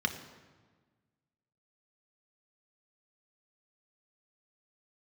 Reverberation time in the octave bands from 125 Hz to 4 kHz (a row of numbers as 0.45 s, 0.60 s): 1.9 s, 1.7 s, 1.5 s, 1.4 s, 1.2 s, 1.0 s